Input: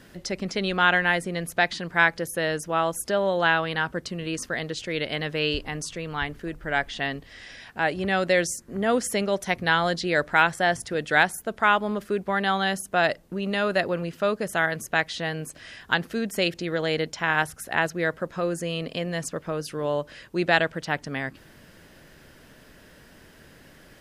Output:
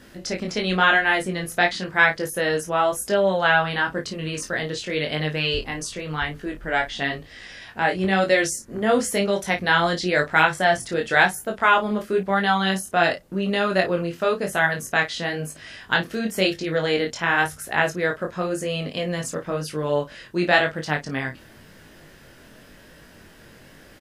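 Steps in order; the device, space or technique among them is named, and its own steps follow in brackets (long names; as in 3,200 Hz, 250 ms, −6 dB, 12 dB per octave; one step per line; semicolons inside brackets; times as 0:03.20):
double-tracked vocal (double-tracking delay 32 ms −9.5 dB; chorus effect 0.96 Hz, delay 19.5 ms, depth 4 ms)
level +5.5 dB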